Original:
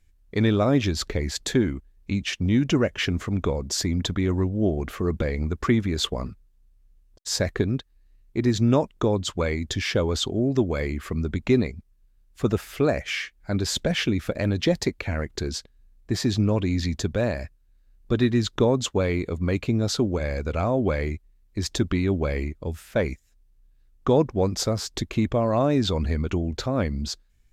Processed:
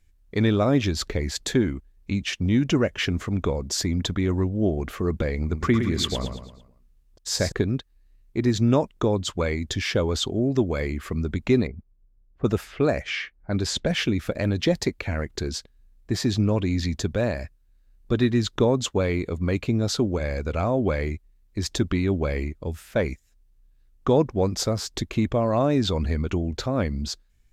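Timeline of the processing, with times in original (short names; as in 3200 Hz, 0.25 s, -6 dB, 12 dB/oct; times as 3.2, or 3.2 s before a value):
5.38–7.52 feedback echo 0.112 s, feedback 43%, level -7.5 dB
11.67–13.99 low-pass opened by the level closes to 580 Hz, open at -20.5 dBFS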